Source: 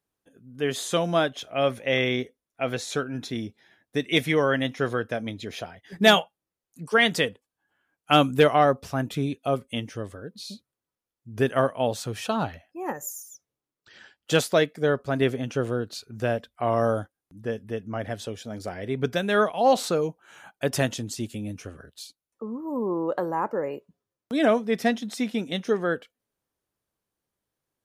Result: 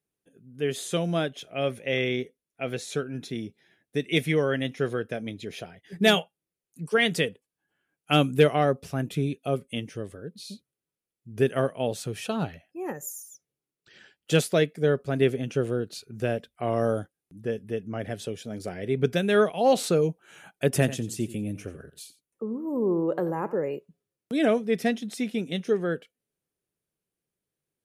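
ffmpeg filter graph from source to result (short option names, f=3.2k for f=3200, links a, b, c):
-filter_complex "[0:a]asettb=1/sr,asplit=3[a][b][c];[a]atrim=end=20.674[d];[b]atrim=start=20.67:end=23.59,asetpts=PTS-STARTPTS,afade=t=in:d=0.004:c=qsin,afade=t=out:st=2.916:d=0.004:c=qsin,equalizer=f=4.5k:w=1.1:g=-5.5,aecho=1:1:88:0.168,atrim=end_sample=128772[e];[c]atrim=start=23.586[f];[d][e]acrossfade=d=0.004:c1=hsin:c2=qsin[g];[g][f]acrossfade=d=0.004:c1=qsin:c2=hsin,equalizer=f=160:t=o:w=0.67:g=8,equalizer=f=400:t=o:w=0.67:g=6,equalizer=f=1k:t=o:w=0.67:g=-5,equalizer=f=2.5k:t=o:w=0.67:g=4,equalizer=f=10k:t=o:w=0.67:g=6,dynaudnorm=f=600:g=17:m=11.5dB,volume=-6dB"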